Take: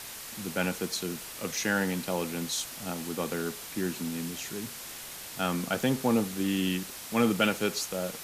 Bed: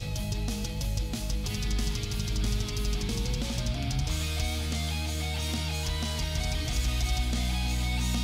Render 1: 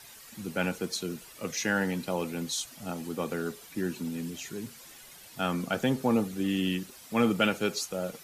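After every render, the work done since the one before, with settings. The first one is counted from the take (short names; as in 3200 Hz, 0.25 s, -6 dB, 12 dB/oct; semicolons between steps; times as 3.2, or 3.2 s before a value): denoiser 11 dB, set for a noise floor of -42 dBFS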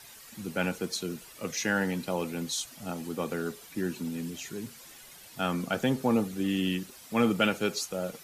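nothing audible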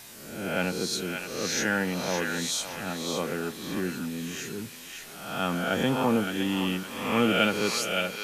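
spectral swells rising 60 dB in 0.85 s; on a send: narrowing echo 0.565 s, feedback 46%, band-pass 2600 Hz, level -3 dB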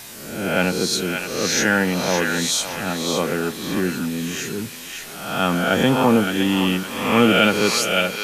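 gain +8.5 dB; limiter -2 dBFS, peak gain reduction 2 dB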